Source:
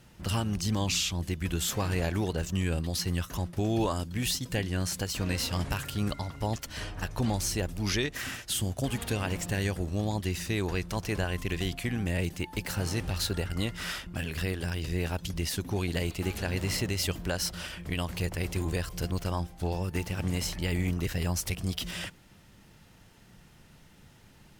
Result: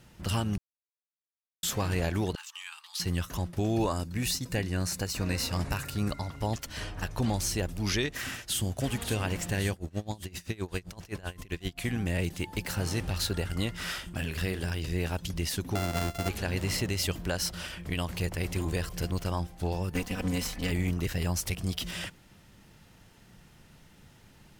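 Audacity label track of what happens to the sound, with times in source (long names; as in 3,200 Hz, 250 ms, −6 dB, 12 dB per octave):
0.580000	1.630000	silence
2.350000	3.000000	Chebyshev high-pass with heavy ripple 840 Hz, ripple 6 dB
3.700000	6.270000	notch filter 3,200 Hz, Q 5.5
8.250000	8.740000	delay throw 550 ms, feedback 80%, level −10.5 dB
9.720000	11.780000	tremolo with a sine in dB 7.7 Hz, depth 24 dB
13.830000	14.760000	double-tracking delay 48 ms −12 dB
15.750000	16.290000	samples sorted by size in blocks of 64 samples
17.860000	18.520000	delay throw 600 ms, feedback 15%, level −16 dB
19.940000	20.710000	lower of the sound and its delayed copy delay 4 ms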